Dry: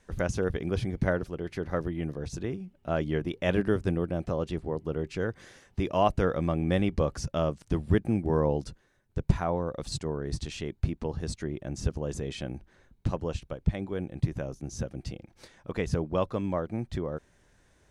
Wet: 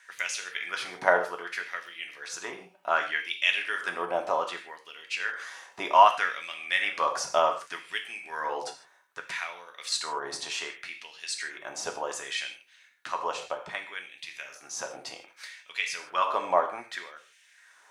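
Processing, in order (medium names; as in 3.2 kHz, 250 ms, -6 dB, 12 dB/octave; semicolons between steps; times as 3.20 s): gated-style reverb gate 180 ms falling, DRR 3 dB; LFO high-pass sine 0.65 Hz 810–2700 Hz; trim +6 dB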